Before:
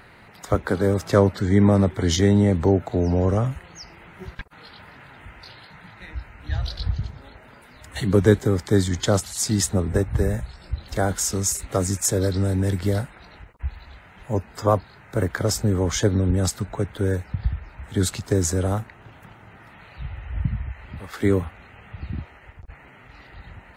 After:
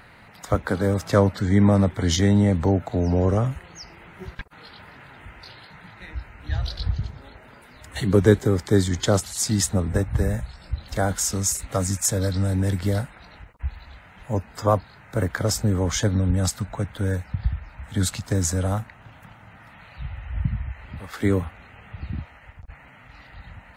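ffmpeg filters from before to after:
ffmpeg -i in.wav -af "asetnsamples=nb_out_samples=441:pad=0,asendcmd='3.12 equalizer g 0.5;9.42 equalizer g -7;11.74 equalizer g -14.5;12.52 equalizer g -6;16 equalizer g -13.5;20.7 equalizer g -4.5;22.18 equalizer g -13.5',equalizer=frequency=380:width_type=o:width=0.37:gain=-6.5" out.wav

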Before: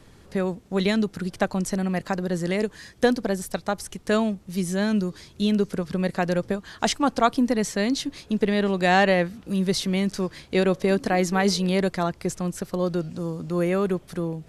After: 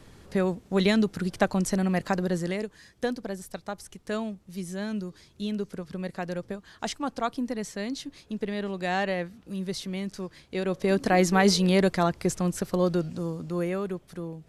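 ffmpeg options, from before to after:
ffmpeg -i in.wav -af "volume=10dB,afade=type=out:start_time=2.24:duration=0.42:silence=0.354813,afade=type=in:start_time=10.61:duration=0.57:silence=0.316228,afade=type=out:start_time=12.78:duration=1.07:silence=0.354813" out.wav

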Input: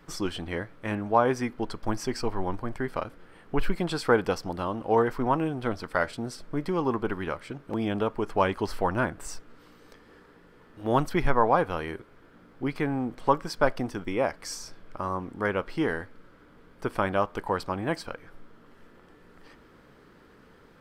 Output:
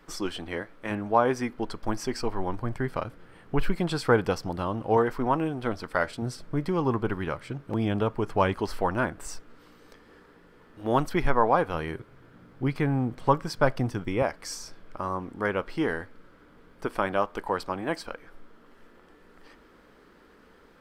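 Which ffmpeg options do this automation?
ffmpeg -i in.wav -af "asetnsamples=nb_out_samples=441:pad=0,asendcmd='0.9 equalizer g -2;2.56 equalizer g 7;4.97 equalizer g -1;6.22 equalizer g 8;8.59 equalizer g -1.5;11.74 equalizer g 10;14.22 equalizer g -2;16.86 equalizer g -10.5',equalizer=frequency=120:width_type=o:width=0.81:gain=-12" out.wav

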